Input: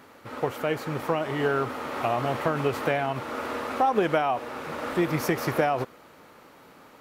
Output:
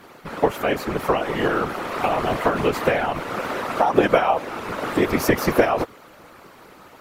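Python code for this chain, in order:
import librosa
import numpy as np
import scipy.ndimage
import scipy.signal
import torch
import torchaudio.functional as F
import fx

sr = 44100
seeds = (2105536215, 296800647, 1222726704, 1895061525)

y = fx.hpss(x, sr, part='percussive', gain_db=6)
y = fx.whisperise(y, sr, seeds[0])
y = y * 10.0 ** (2.0 / 20.0)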